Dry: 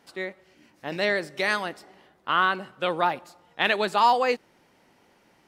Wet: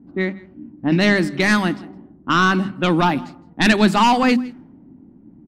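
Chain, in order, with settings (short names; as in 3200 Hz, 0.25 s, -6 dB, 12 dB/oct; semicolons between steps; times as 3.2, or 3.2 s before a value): sine folder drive 7 dB, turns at -7 dBFS; low-pass opened by the level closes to 380 Hz, open at -14.5 dBFS; resonant low shelf 360 Hz +9.5 dB, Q 3; notches 50/100/150/200/250 Hz; echo 0.163 s -23 dB; gain -2 dB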